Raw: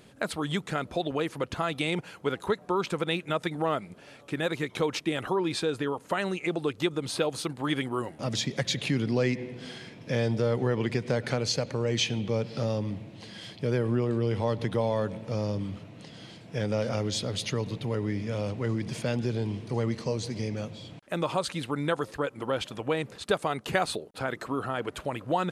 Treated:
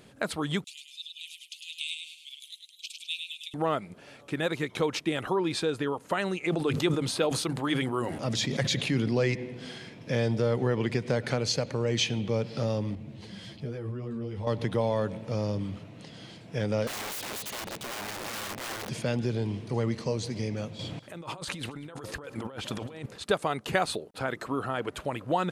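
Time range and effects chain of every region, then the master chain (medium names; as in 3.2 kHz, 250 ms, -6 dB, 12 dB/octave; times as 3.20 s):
0.64–3.54 s: steep high-pass 2.6 kHz 72 dB/octave + feedback delay 103 ms, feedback 40%, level -5 dB
6.43–9.35 s: hum notches 50/100/150/200/250 Hz + decay stretcher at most 46 dB/s
12.95–14.47 s: peaking EQ 100 Hz +7.5 dB 2.7 oct + compression 2:1, threshold -34 dBFS + three-phase chorus
16.87–18.89 s: integer overflow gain 31 dB + bass shelf 130 Hz -11.5 dB
20.79–23.06 s: compressor with a negative ratio -39 dBFS + delay 194 ms -19.5 dB
whole clip: none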